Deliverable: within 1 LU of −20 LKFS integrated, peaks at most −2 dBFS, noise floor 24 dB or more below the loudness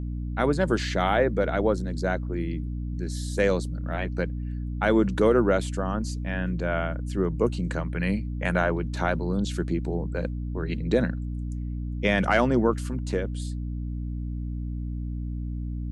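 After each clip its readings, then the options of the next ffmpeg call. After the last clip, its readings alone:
mains hum 60 Hz; hum harmonics up to 300 Hz; level of the hum −28 dBFS; integrated loudness −27.0 LKFS; sample peak −8.5 dBFS; target loudness −20.0 LKFS
→ -af "bandreject=frequency=60:width_type=h:width=4,bandreject=frequency=120:width_type=h:width=4,bandreject=frequency=180:width_type=h:width=4,bandreject=frequency=240:width_type=h:width=4,bandreject=frequency=300:width_type=h:width=4"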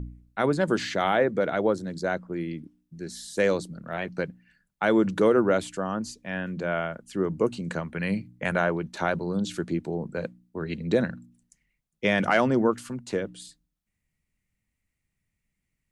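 mains hum none found; integrated loudness −27.0 LKFS; sample peak −9.5 dBFS; target loudness −20.0 LKFS
→ -af "volume=7dB"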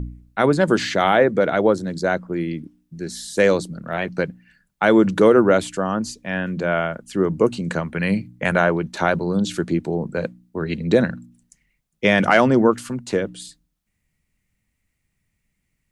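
integrated loudness −20.0 LKFS; sample peak −2.5 dBFS; background noise floor −74 dBFS

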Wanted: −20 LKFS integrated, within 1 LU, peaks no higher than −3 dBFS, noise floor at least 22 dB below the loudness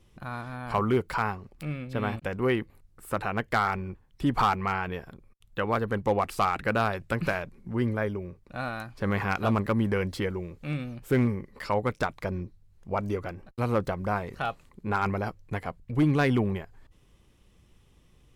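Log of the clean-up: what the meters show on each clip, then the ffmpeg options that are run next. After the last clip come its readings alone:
integrated loudness −29.5 LKFS; sample peak −14.5 dBFS; target loudness −20.0 LKFS
→ -af "volume=9.5dB"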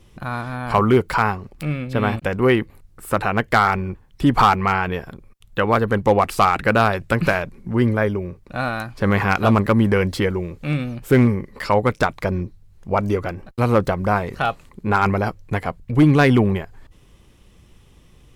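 integrated loudness −20.0 LKFS; sample peak −5.0 dBFS; background noise floor −51 dBFS

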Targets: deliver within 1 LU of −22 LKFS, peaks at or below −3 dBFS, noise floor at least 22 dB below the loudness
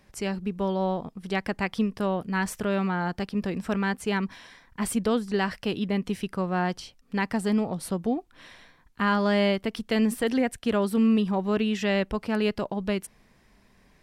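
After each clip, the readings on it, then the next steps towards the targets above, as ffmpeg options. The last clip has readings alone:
integrated loudness −27.0 LKFS; sample peak −13.0 dBFS; target loudness −22.0 LKFS
→ -af "volume=5dB"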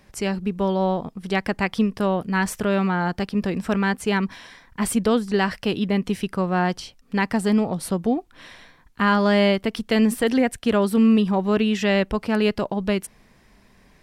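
integrated loudness −22.0 LKFS; sample peak −8.0 dBFS; background noise floor −56 dBFS

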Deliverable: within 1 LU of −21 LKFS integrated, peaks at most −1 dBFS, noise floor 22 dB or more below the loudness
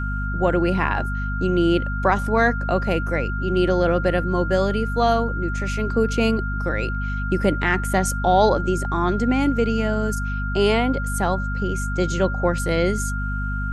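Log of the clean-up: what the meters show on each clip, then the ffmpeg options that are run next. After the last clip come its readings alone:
mains hum 50 Hz; hum harmonics up to 250 Hz; level of the hum −23 dBFS; interfering tone 1,400 Hz; level of the tone −29 dBFS; integrated loudness −21.5 LKFS; sample peak −4.0 dBFS; target loudness −21.0 LKFS
→ -af "bandreject=frequency=50:width_type=h:width=4,bandreject=frequency=100:width_type=h:width=4,bandreject=frequency=150:width_type=h:width=4,bandreject=frequency=200:width_type=h:width=4,bandreject=frequency=250:width_type=h:width=4"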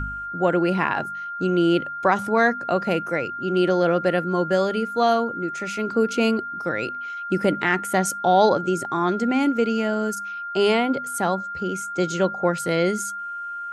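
mains hum none found; interfering tone 1,400 Hz; level of the tone −29 dBFS
→ -af "bandreject=frequency=1400:width=30"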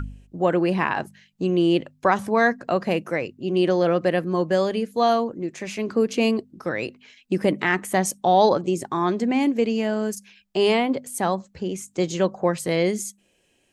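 interfering tone none found; integrated loudness −23.0 LKFS; sample peak −5.0 dBFS; target loudness −21.0 LKFS
→ -af "volume=2dB"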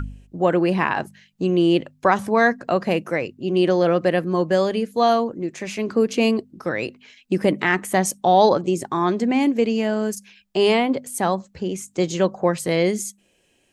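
integrated loudness −21.0 LKFS; sample peak −3.0 dBFS; background noise floor −63 dBFS

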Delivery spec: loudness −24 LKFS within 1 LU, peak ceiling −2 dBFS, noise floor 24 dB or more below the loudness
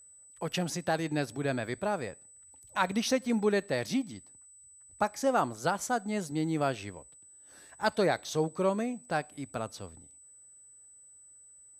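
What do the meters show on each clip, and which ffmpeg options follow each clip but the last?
interfering tone 8,000 Hz; level of the tone −53 dBFS; integrated loudness −31.5 LKFS; sample peak −12.5 dBFS; target loudness −24.0 LKFS
→ -af "bandreject=frequency=8000:width=30"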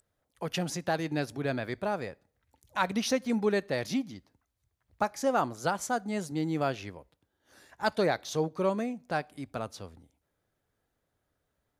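interfering tone none found; integrated loudness −31.5 LKFS; sample peak −12.5 dBFS; target loudness −24.0 LKFS
→ -af "volume=7.5dB"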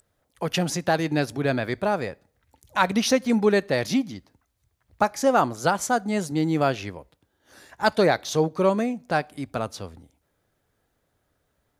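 integrated loudness −24.0 LKFS; sample peak −5.0 dBFS; background noise floor −73 dBFS

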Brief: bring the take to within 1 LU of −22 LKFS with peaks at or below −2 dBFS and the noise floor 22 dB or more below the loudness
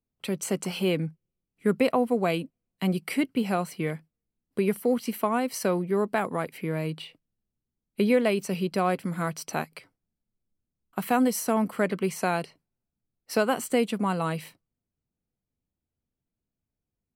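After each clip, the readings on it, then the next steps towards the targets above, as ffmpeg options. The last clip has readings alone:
integrated loudness −27.5 LKFS; sample peak −10.5 dBFS; target loudness −22.0 LKFS
→ -af "volume=5.5dB"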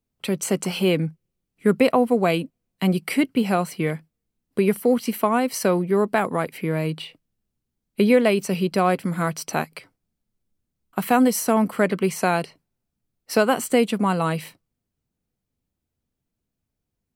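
integrated loudness −22.0 LKFS; sample peak −5.0 dBFS; background noise floor −82 dBFS

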